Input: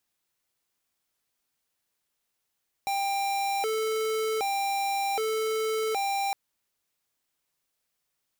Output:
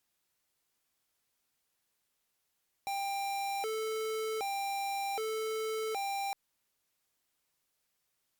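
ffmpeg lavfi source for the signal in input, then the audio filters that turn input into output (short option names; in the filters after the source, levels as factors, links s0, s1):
-f lavfi -i "aevalsrc='0.0398*(2*lt(mod((615.5*t+176.5/0.65*(0.5-abs(mod(0.65*t,1)-0.5))),1),0.5)-1)':d=3.46:s=44100"
-af "alimiter=level_in=3.55:limit=0.0631:level=0:latency=1:release=71,volume=0.282" -ar 48000 -c:a libopus -b:a 256k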